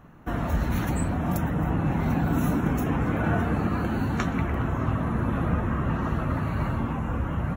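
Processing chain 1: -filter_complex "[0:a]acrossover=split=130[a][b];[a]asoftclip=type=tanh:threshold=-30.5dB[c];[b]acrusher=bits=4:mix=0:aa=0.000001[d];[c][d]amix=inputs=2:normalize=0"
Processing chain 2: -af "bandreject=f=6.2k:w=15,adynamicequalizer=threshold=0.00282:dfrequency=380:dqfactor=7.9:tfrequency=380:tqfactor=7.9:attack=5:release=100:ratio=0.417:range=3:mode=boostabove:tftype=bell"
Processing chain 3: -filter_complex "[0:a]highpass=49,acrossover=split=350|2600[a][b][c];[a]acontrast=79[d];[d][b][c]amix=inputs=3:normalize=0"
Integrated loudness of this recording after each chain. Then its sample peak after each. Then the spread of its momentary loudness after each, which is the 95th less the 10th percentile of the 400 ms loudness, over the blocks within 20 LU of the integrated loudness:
-26.5, -26.5, -21.0 LUFS; -13.0, -11.5, -8.0 dBFS; 3, 4, 4 LU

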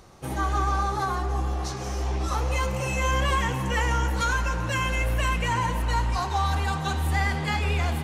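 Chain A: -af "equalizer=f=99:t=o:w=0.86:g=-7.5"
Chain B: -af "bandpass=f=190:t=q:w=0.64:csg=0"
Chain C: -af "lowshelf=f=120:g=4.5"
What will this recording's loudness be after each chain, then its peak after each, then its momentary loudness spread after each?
-27.0, -32.5, -24.5 LUFS; -14.5, -20.0, -12.5 dBFS; 5, 3, 3 LU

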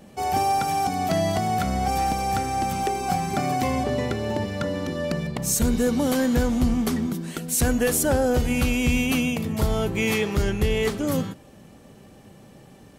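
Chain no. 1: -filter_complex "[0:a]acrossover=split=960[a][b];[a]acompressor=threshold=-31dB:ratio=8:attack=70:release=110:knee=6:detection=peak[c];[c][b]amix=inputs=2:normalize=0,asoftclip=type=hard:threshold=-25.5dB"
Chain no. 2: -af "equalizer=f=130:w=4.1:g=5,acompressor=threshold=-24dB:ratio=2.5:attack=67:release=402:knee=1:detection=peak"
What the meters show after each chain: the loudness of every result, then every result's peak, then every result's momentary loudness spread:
-29.5, -25.5 LUFS; -25.5, -12.5 dBFS; 14, 3 LU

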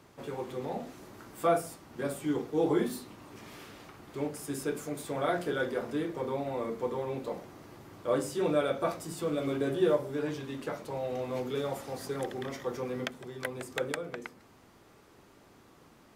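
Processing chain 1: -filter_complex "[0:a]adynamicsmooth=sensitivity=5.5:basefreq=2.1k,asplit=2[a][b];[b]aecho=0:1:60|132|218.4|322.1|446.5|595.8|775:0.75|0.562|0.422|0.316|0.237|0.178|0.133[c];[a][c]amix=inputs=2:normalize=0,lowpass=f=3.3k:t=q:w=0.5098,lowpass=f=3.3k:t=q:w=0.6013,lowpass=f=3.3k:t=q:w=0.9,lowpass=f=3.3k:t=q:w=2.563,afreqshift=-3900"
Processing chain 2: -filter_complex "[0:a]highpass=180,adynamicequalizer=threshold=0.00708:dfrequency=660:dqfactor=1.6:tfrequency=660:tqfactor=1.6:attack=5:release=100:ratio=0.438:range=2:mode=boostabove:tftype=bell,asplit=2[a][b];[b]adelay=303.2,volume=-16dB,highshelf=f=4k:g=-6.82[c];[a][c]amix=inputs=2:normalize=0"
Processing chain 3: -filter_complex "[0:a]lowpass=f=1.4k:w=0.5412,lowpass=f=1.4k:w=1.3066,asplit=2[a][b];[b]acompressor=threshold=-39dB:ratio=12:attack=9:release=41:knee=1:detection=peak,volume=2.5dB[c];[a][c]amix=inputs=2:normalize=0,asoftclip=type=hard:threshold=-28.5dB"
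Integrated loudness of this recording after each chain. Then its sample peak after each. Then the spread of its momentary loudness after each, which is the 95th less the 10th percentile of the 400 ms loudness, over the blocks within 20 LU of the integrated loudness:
-26.5, -32.0, -34.0 LUFS; -10.5, -12.0, -28.5 dBFS; 15, 18, 13 LU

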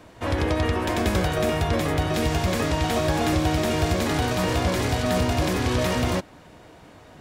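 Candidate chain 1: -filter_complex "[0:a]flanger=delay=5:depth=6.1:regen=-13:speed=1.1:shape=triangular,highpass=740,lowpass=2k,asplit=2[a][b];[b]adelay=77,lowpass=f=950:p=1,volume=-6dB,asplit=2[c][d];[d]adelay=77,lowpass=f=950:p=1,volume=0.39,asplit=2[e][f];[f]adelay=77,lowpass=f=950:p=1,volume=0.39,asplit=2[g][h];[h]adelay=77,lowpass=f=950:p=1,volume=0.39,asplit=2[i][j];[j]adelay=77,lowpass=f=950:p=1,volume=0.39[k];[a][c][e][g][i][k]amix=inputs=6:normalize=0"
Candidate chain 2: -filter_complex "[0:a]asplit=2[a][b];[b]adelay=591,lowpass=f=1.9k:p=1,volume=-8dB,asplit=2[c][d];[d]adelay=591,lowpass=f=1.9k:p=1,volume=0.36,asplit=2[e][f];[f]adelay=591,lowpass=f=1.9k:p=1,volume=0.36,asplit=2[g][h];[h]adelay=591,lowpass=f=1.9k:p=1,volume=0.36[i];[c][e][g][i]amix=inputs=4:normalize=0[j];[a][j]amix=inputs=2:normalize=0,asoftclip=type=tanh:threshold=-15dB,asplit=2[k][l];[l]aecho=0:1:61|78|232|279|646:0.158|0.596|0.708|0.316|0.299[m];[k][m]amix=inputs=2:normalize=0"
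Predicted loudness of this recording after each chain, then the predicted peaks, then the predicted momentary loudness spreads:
-33.5, -21.5 LUFS; -20.0, -8.5 dBFS; 2, 6 LU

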